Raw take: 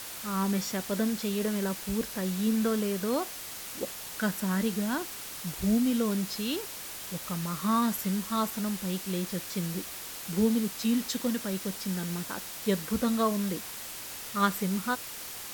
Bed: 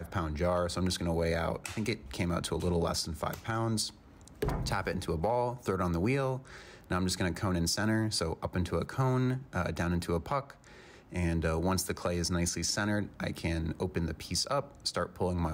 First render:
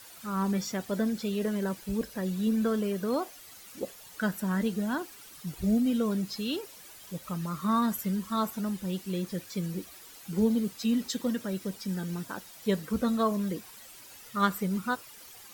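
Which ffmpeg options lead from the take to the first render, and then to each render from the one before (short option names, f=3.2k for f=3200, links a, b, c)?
-af "afftdn=nr=12:nf=-41"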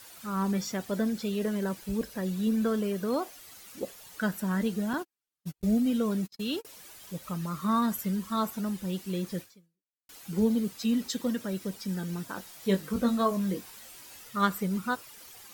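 -filter_complex "[0:a]asettb=1/sr,asplit=3[a][b][c];[a]atrim=end=4.934[d];[b]atrim=start=4.93:end=6.65,asetpts=PTS-STARTPTS,afade=t=in:d=0.004:c=qsin,afade=t=out:st=1.716:d=0.004:c=qsin,agate=range=-43dB:threshold=-36dB:ratio=16:release=100:detection=peak[e];[c]atrim=start=6.646[f];[d][e]acrossfade=d=0.004:c1=hsin:c2=qsin[g];[g][f]acrossfade=d=0.004:c1=qsin:c2=hsin,asettb=1/sr,asplit=3[h][i][j];[h]atrim=end=12.344[k];[i]atrim=start=12.34:end=14.24,asetpts=PTS-STARTPTS,afade=t=in:d=0.004:c=qsin,afade=t=out:st=1.896:d=0.004:c=qsin,asplit=2[l][m];[m]adelay=21,volume=-6dB[n];[l][n]amix=inputs=2:normalize=0,atrim=end_sample=83790[o];[j]atrim=start=14.236[p];[k][o]acrossfade=d=0.004:c1=hsin:c2=qsin[q];[q][p]acrossfade=d=0.004:c1=qsin:c2=hsin,asplit=2[r][s];[r]atrim=end=10.09,asetpts=PTS-STARTPTS,afade=t=out:st=9.41:d=0.68:c=exp[t];[s]atrim=start=10.09,asetpts=PTS-STARTPTS,afade=t=in:d=0.004:c=hsin[u];[t][u]concat=n=2:v=0:a=1"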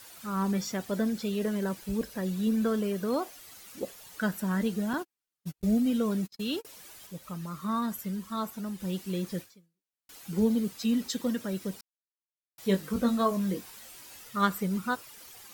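-filter_complex "[0:a]asplit=5[a][b][c][d][e];[a]atrim=end=7.072[f];[b]atrim=start=7.068:end=8.802,asetpts=PTS-STARTPTS,volume=-4dB[g];[c]atrim=start=8.798:end=11.81,asetpts=PTS-STARTPTS,afade=t=out:st=3.008:d=0.004:c=hsin[h];[d]atrim=start=11.81:end=12.58,asetpts=PTS-STARTPTS,volume=0[i];[e]atrim=start=12.58,asetpts=PTS-STARTPTS,afade=t=in:d=0.004:c=hsin[j];[f][g]acrossfade=d=0.004:c1=hsin:c2=hsin[k];[h][i][j]concat=n=3:v=0:a=1[l];[k][l]acrossfade=d=0.004:c1=hsin:c2=hsin"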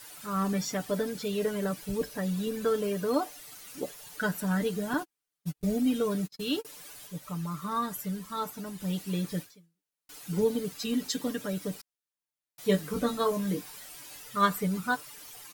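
-af "equalizer=f=9.8k:w=5:g=3,aecho=1:1:6.8:0.72"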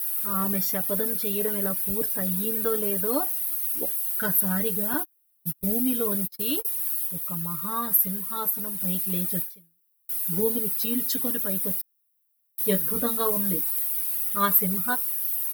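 -af "aexciter=amount=12.9:drive=4.6:freq=10k"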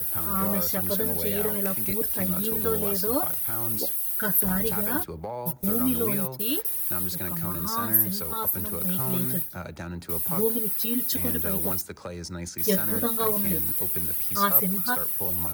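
-filter_complex "[1:a]volume=-4.5dB[a];[0:a][a]amix=inputs=2:normalize=0"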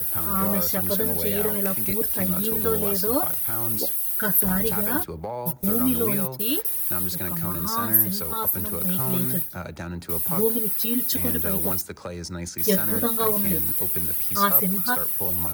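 -af "volume=2.5dB,alimiter=limit=-3dB:level=0:latency=1"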